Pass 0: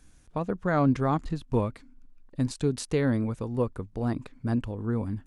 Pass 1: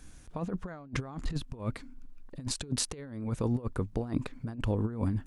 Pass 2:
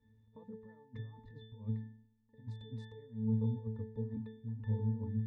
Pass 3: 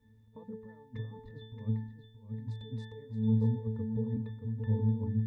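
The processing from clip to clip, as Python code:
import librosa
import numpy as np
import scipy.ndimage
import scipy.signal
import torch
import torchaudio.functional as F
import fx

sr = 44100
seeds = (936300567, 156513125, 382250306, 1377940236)

y1 = fx.over_compress(x, sr, threshold_db=-32.0, ratio=-0.5)
y2 = fx.octave_resonator(y1, sr, note='A', decay_s=0.57)
y2 = y2 * librosa.db_to_amplitude(6.0)
y3 = y2 + 10.0 ** (-8.5 / 20.0) * np.pad(y2, (int(625 * sr / 1000.0), 0))[:len(y2)]
y3 = y3 * librosa.db_to_amplitude(5.0)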